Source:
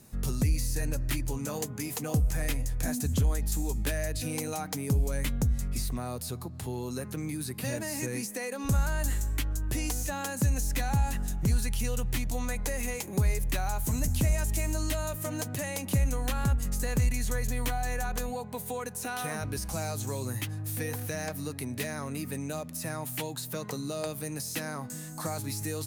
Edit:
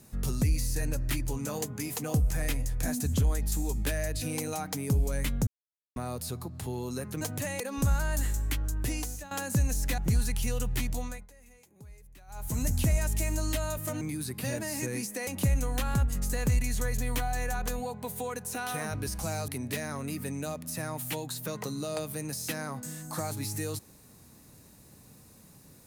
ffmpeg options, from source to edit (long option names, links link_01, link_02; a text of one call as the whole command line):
ffmpeg -i in.wav -filter_complex "[0:a]asplit=12[link_01][link_02][link_03][link_04][link_05][link_06][link_07][link_08][link_09][link_10][link_11][link_12];[link_01]atrim=end=5.47,asetpts=PTS-STARTPTS,afade=type=out:start_time=5.466:duration=0.004:curve=hsin[link_13];[link_02]atrim=start=5.47:end=5.96,asetpts=PTS-STARTPTS,volume=0[link_14];[link_03]atrim=start=5.96:end=7.212,asetpts=PTS-STARTPTS,afade=type=in:duration=0.004:curve=hsin[link_15];[link_04]atrim=start=15.378:end=15.772[link_16];[link_05]atrim=start=8.468:end=10.18,asetpts=PTS-STARTPTS,afade=type=out:start_time=1.262:duration=0.45:silence=0.177828[link_17];[link_06]atrim=start=10.18:end=10.852,asetpts=PTS-STARTPTS,afade=type=in:duration=0.004:curve=hsin:silence=0.177828[link_18];[link_07]atrim=start=11.348:end=12.64,asetpts=PTS-STARTPTS,afade=type=out:start_time=0.932:duration=0.36:silence=0.0630957[link_19];[link_08]atrim=start=12.64:end=13.64,asetpts=PTS-STARTPTS,volume=-24dB[link_20];[link_09]atrim=start=13.64:end=15.382,asetpts=PTS-STARTPTS,afade=type=in:duration=0.36:silence=0.0630957[link_21];[link_10]atrim=start=7.208:end=8.472[link_22];[link_11]atrim=start=15.768:end=19.982[link_23];[link_12]atrim=start=21.548[link_24];[link_13][link_14][link_15]concat=n=3:v=0:a=1[link_25];[link_25][link_16]acrossfade=duration=0.004:curve1=hsin:curve2=hsin[link_26];[link_17][link_18]concat=n=2:v=0:a=1[link_27];[link_26][link_27]acrossfade=duration=0.004:curve1=hsin:curve2=hsin[link_28];[link_19][link_20][link_21]concat=n=3:v=0:a=1[link_29];[link_28][link_29]acrossfade=duration=0.004:curve1=hsin:curve2=hsin[link_30];[link_30][link_22]acrossfade=duration=0.004:curve1=hsin:curve2=hsin[link_31];[link_31][link_23]acrossfade=duration=0.004:curve1=hsin:curve2=hsin[link_32];[link_32][link_24]acrossfade=duration=0.004:curve1=hsin:curve2=hsin" out.wav